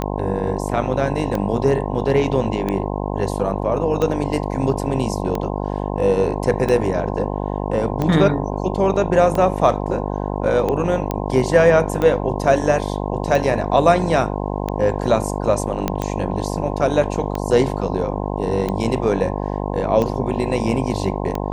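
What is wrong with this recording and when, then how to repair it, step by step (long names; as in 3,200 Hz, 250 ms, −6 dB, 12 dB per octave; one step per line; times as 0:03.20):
mains buzz 50 Hz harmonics 21 −24 dBFS
scratch tick 45 rpm −10 dBFS
0:11.11: click −10 dBFS
0:15.88: click −6 dBFS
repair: click removal
hum removal 50 Hz, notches 21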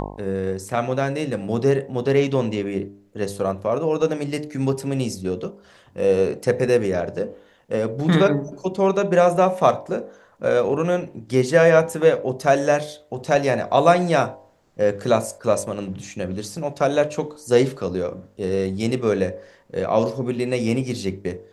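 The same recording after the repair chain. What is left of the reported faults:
none of them is left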